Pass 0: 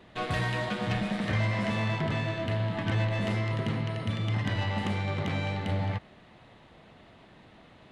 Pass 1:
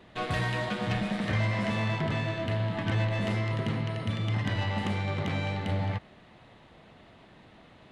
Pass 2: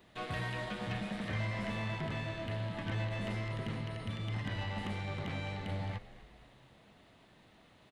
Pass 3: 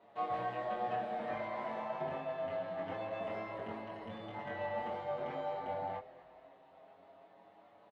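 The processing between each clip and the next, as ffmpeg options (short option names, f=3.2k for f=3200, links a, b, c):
-af anull
-filter_complex "[0:a]aemphasis=mode=production:type=50kf,acrossover=split=3800[a][b];[b]acompressor=threshold=-49dB:ratio=4:attack=1:release=60[c];[a][c]amix=inputs=2:normalize=0,asplit=6[d][e][f][g][h][i];[e]adelay=251,afreqshift=-76,volume=-17dB[j];[f]adelay=502,afreqshift=-152,volume=-22.5dB[k];[g]adelay=753,afreqshift=-228,volume=-28dB[l];[h]adelay=1004,afreqshift=-304,volume=-33.5dB[m];[i]adelay=1255,afreqshift=-380,volume=-39.1dB[n];[d][j][k][l][m][n]amix=inputs=6:normalize=0,volume=-8.5dB"
-filter_complex "[0:a]bandpass=f=700:t=q:w=2.2:csg=0,asplit=2[a][b];[b]adelay=22,volume=-2dB[c];[a][c]amix=inputs=2:normalize=0,asplit=2[d][e];[e]adelay=6.8,afreqshift=0.26[f];[d][f]amix=inputs=2:normalize=1,volume=10dB"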